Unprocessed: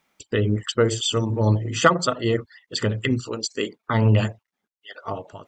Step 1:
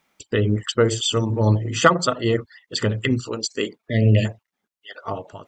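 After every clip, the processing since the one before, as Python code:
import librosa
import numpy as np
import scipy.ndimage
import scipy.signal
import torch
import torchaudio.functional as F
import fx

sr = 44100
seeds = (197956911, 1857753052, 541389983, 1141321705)

y = fx.spec_repair(x, sr, seeds[0], start_s=3.89, length_s=0.34, low_hz=680.0, high_hz=1700.0, source='before')
y = y * 10.0 ** (1.5 / 20.0)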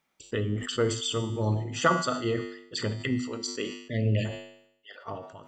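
y = fx.comb_fb(x, sr, f0_hz=50.0, decay_s=0.94, harmonics='odd', damping=0.0, mix_pct=70)
y = fx.sustainer(y, sr, db_per_s=83.0)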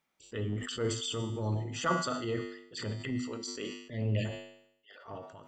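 y = fx.transient(x, sr, attack_db=-8, sustain_db=1)
y = y * 10.0 ** (-4.0 / 20.0)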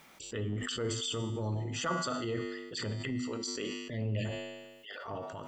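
y = fx.env_flatten(x, sr, amount_pct=50)
y = y * 10.0 ** (-4.5 / 20.0)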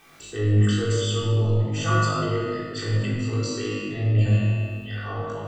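y = fx.room_flutter(x, sr, wall_m=3.3, rt60_s=0.3)
y = fx.room_shoebox(y, sr, seeds[1], volume_m3=2800.0, walls='mixed', distance_m=3.6)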